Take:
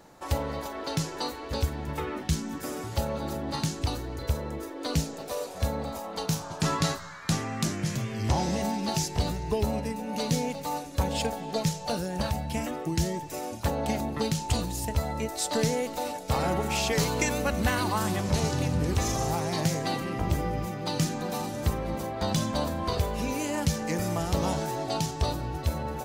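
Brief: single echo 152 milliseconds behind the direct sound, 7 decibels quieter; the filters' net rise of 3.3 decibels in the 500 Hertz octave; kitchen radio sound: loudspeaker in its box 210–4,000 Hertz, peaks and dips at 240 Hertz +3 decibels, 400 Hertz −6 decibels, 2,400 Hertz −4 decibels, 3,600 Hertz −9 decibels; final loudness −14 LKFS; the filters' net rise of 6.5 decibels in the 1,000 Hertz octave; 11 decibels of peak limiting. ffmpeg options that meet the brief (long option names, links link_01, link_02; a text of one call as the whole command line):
ffmpeg -i in.wav -af "equalizer=frequency=500:width_type=o:gain=4,equalizer=frequency=1000:width_type=o:gain=7,alimiter=limit=-21dB:level=0:latency=1,highpass=210,equalizer=frequency=240:width_type=q:width=4:gain=3,equalizer=frequency=400:width_type=q:width=4:gain=-6,equalizer=frequency=2400:width_type=q:width=4:gain=-4,equalizer=frequency=3600:width_type=q:width=4:gain=-9,lowpass=frequency=4000:width=0.5412,lowpass=frequency=4000:width=1.3066,aecho=1:1:152:0.447,volume=17.5dB" out.wav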